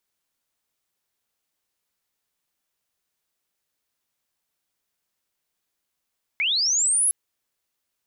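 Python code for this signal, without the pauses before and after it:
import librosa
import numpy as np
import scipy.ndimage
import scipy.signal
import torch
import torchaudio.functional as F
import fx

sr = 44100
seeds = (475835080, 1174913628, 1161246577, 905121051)

y = fx.chirp(sr, length_s=0.71, from_hz=2100.0, to_hz=11000.0, law='linear', from_db=-20.0, to_db=-17.0)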